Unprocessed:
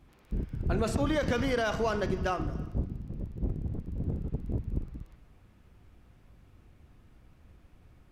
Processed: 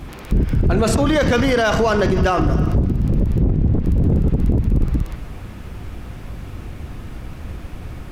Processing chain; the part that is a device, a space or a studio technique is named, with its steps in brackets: loud club master (compressor 2:1, threshold -33 dBFS, peak gain reduction 6 dB; hard clip -25 dBFS, distortion -29 dB; maximiser +33.5 dB); 3.4–3.84 air absorption 94 m; gain -8 dB

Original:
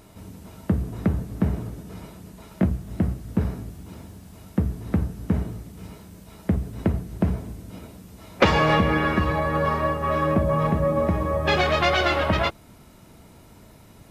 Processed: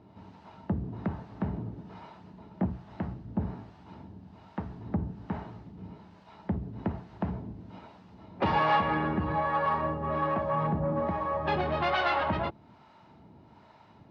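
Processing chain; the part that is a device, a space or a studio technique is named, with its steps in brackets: guitar amplifier with harmonic tremolo (harmonic tremolo 1.2 Hz, depth 70%, crossover 540 Hz; soft clip -18.5 dBFS, distortion -14 dB; speaker cabinet 100–4000 Hz, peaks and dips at 490 Hz -4 dB, 880 Hz +9 dB, 2300 Hz -4 dB, 3400 Hz -4 dB); gain -2 dB

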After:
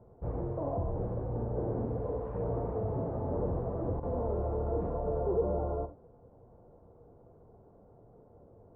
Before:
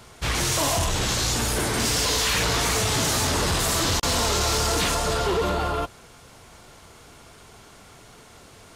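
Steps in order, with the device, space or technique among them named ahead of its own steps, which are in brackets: under water (LPF 750 Hz 24 dB/oct; bell 490 Hz +6.5 dB 0.3 oct); non-linear reverb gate 0.11 s flat, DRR 9 dB; gain -8 dB

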